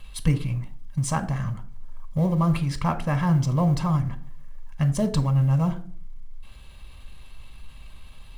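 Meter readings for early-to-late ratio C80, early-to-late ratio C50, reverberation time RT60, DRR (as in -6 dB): 20.5 dB, 16.5 dB, 0.50 s, 9.0 dB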